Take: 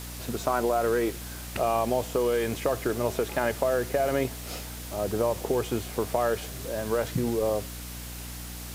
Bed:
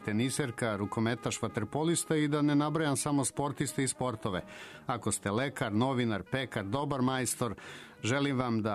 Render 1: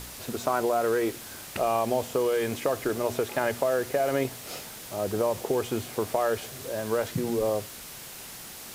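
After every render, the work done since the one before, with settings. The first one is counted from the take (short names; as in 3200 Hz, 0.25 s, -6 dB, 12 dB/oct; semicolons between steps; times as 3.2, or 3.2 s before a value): de-hum 60 Hz, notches 5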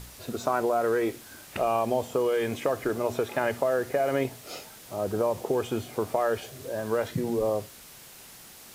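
noise print and reduce 6 dB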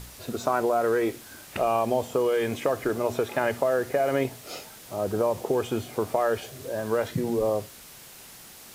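gain +1.5 dB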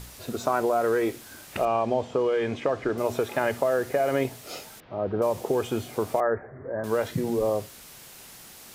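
1.65–2.98 air absorption 120 m; 4.8–5.22 Gaussian blur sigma 3 samples; 6.2–6.84 steep low-pass 2000 Hz 96 dB/oct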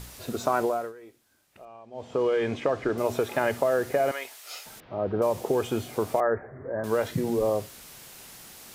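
0.62–2.23 dip -22.5 dB, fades 0.31 s linear; 4.11–4.66 HPF 1100 Hz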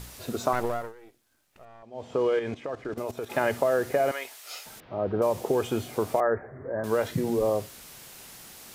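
0.53–1.83 half-wave gain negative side -12 dB; 2.39–3.3 level quantiser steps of 16 dB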